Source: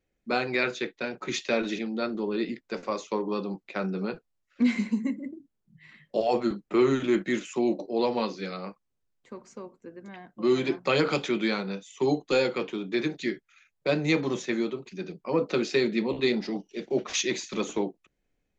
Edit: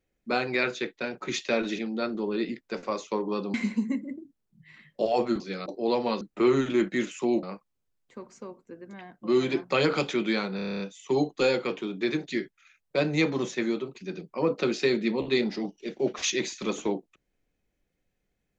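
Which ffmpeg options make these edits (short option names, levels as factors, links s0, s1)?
-filter_complex "[0:a]asplit=14[s0][s1][s2][s3][s4][s5][s6][s7][s8][s9][s10][s11][s12][s13];[s0]atrim=end=3.542[s14];[s1]atrim=start=4.688:end=6.552[s15];[s2]atrim=start=8.318:end=8.582[s16];[s3]atrim=start=7.768:end=8.322[s17];[s4]atrim=start=6.548:end=7.772[s18];[s5]atrim=start=8.578:end=11.742[s19];[s6]atrim=start=11.708:end=11.742[s20];[s7]atrim=start=11.708:end=11.742[s21];[s8]atrim=start=11.708:end=11.742[s22];[s9]atrim=start=11.708:end=11.742[s23];[s10]atrim=start=11.708:end=11.742[s24];[s11]atrim=start=11.708:end=11.742[s25];[s12]atrim=start=11.708:end=11.742[s26];[s13]atrim=start=11.708[s27];[s14][s15]acrossfade=d=0.004:c1=hsin:c2=hsin[s28];[s28][s16]acrossfade=d=0.004:c1=hsin:c2=hsin[s29];[s29][s17]acrossfade=d=0.004:c1=hsin:c2=hsin[s30];[s30][s18]acrossfade=d=0.004:c1=hsin:c2=hsin[s31];[s31][s19]acrossfade=d=0.004:c1=hsin:c2=hsin[s32];[s32][s20]acrossfade=d=0.004:c1=hsin:c2=hsin[s33];[s33][s21]acrossfade=d=0.004:c1=hsin:c2=hsin[s34];[s34][s22]acrossfade=d=0.004:c1=hsin:c2=hsin[s35];[s35][s23]acrossfade=d=0.004:c1=hsin:c2=hsin[s36];[s36][s24]acrossfade=d=0.004:c1=hsin:c2=hsin[s37];[s37][s25]acrossfade=d=0.004:c1=hsin:c2=hsin[s38];[s38][s26]acrossfade=d=0.004:c1=hsin:c2=hsin[s39];[s39][s27]acrossfade=d=0.004:c1=hsin:c2=hsin"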